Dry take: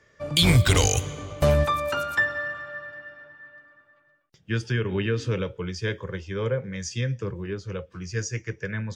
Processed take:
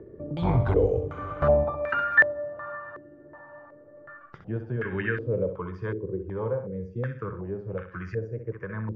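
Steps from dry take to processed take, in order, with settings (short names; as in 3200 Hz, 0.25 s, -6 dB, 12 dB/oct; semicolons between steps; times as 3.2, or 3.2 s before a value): upward compressor, threshold -25 dBFS; flutter echo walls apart 11 m, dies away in 0.47 s; stepped low-pass 2.7 Hz 370–1700 Hz; gain -5.5 dB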